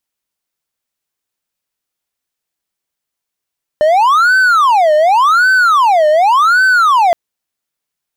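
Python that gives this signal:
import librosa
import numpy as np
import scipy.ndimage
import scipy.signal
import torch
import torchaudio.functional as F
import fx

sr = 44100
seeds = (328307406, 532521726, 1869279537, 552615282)

y = fx.siren(sr, length_s=3.32, kind='wail', low_hz=605.0, high_hz=1530.0, per_s=0.88, wave='triangle', level_db=-4.5)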